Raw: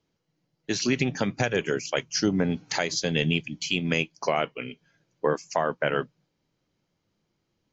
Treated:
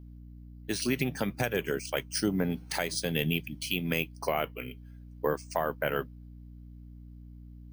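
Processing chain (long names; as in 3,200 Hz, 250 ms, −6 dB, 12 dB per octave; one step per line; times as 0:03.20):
mains hum 60 Hz, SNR 14 dB
bad sample-rate conversion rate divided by 3×, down filtered, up hold
level −4.5 dB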